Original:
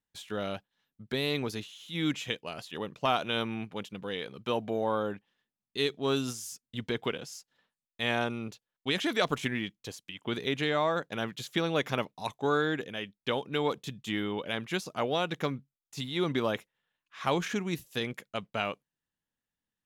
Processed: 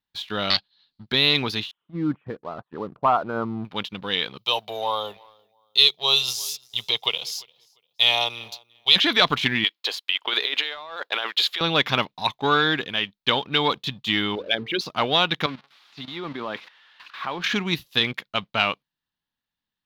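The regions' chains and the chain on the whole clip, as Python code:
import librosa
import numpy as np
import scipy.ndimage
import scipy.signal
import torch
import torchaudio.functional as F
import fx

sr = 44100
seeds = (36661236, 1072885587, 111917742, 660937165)

y = fx.chain(x, sr, fx.self_delay(depth_ms=0.72),
    fx.lowpass_res(hz=4400.0, q=10.0), at=(0.5, 1.06))
y = fx.chain(y, sr, fx.envelope_sharpen(power=1.5),
    fx.steep_lowpass(hz=1400.0, slope=36), at=(1.71, 3.65))
y = fx.chain(y, sr, fx.tilt_eq(slope=3.0),
    fx.fixed_phaser(hz=650.0, stages=4),
    fx.echo_feedback(ms=347, feedback_pct=29, wet_db=-22.0), at=(4.38, 8.96))
y = fx.chain(y, sr, fx.highpass(hz=440.0, slope=24),
    fx.notch(hz=5900.0, q=11.0),
    fx.over_compress(threshold_db=-39.0, ratio=-1.0), at=(9.64, 11.61))
y = fx.chain(y, sr, fx.envelope_sharpen(power=3.0),
    fx.hum_notches(base_hz=50, count=9), at=(14.35, 14.81))
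y = fx.chain(y, sr, fx.crossing_spikes(level_db=-25.5),
    fx.level_steps(step_db=12),
    fx.bandpass_edges(low_hz=200.0, high_hz=2000.0), at=(15.46, 17.44))
y = fx.dynamic_eq(y, sr, hz=2700.0, q=0.8, threshold_db=-45.0, ratio=4.0, max_db=4)
y = fx.leveller(y, sr, passes=1)
y = fx.graphic_eq(y, sr, hz=(500, 1000, 4000, 8000), db=(-4, 5, 11, -12))
y = F.gain(torch.from_numpy(y), 2.5).numpy()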